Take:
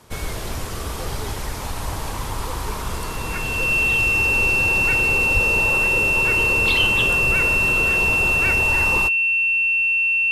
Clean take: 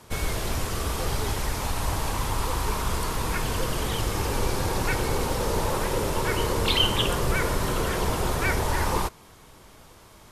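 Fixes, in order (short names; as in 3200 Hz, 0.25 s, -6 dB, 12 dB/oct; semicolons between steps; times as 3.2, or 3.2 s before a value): notch 2700 Hz, Q 30; de-plosive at 5.33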